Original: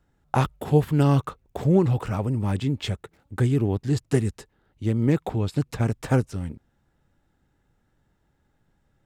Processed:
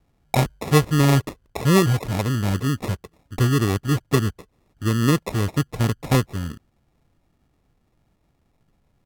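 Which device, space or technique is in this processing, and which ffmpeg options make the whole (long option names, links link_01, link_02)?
crushed at another speed: -af "asetrate=55125,aresample=44100,acrusher=samples=23:mix=1:aa=0.000001,asetrate=35280,aresample=44100,volume=2.5dB"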